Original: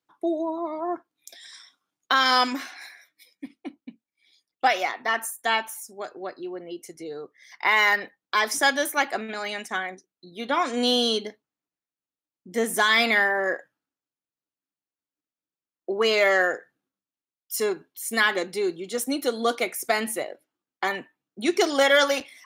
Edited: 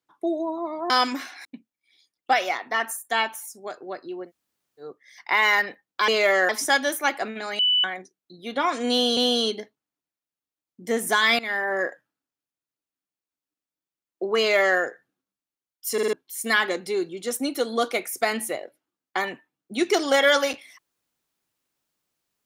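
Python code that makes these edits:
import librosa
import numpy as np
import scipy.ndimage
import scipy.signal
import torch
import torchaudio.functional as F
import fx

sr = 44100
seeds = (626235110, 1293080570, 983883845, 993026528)

y = fx.edit(x, sr, fx.cut(start_s=0.9, length_s=1.4),
    fx.cut(start_s=2.85, length_s=0.94),
    fx.room_tone_fill(start_s=6.61, length_s=0.55, crossfade_s=0.1),
    fx.bleep(start_s=9.52, length_s=0.25, hz=2980.0, db=-17.0),
    fx.repeat(start_s=10.84, length_s=0.26, count=2),
    fx.fade_in_from(start_s=13.06, length_s=0.36, floor_db=-16.5),
    fx.duplicate(start_s=16.05, length_s=0.41, to_s=8.42),
    fx.stutter_over(start_s=17.6, slice_s=0.05, count=4), tone=tone)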